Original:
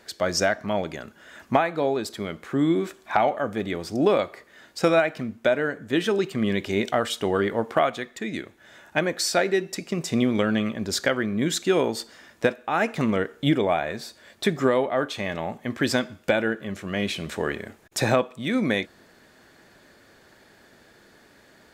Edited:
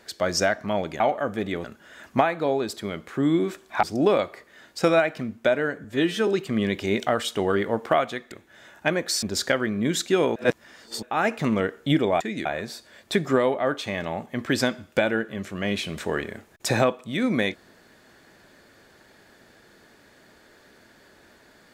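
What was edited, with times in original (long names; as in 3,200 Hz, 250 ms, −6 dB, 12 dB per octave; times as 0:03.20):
0:03.19–0:03.83: move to 0:01.00
0:05.84–0:06.13: time-stretch 1.5×
0:08.17–0:08.42: move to 0:13.77
0:09.33–0:10.79: remove
0:11.92–0:12.59: reverse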